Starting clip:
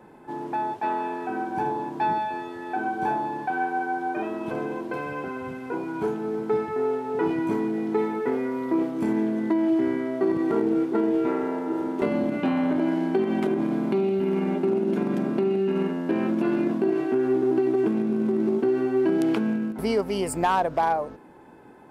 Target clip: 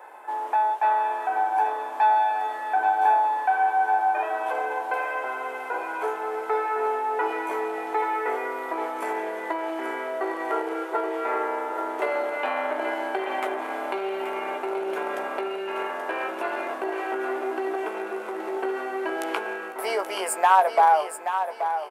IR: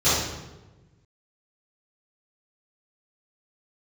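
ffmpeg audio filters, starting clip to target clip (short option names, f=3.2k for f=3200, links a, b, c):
-filter_complex "[0:a]highpass=f=610:w=0.5412,highpass=f=610:w=1.3066,equalizer=f=4.7k:w=1:g=-8,asplit=2[a][b];[b]acompressor=threshold=-40dB:ratio=6,volume=-2dB[c];[a][c]amix=inputs=2:normalize=0,asplit=2[d][e];[e]adelay=16,volume=-8.5dB[f];[d][f]amix=inputs=2:normalize=0,aecho=1:1:829|1658|2487|3316:0.355|0.121|0.041|0.0139,volume=4.5dB"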